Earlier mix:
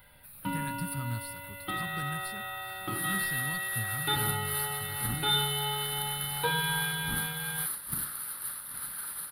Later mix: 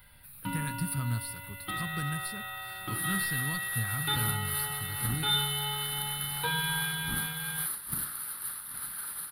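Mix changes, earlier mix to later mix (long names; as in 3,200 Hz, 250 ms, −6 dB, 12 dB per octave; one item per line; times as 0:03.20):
speech +3.5 dB
first sound: add parametric band 510 Hz −7 dB 1.5 octaves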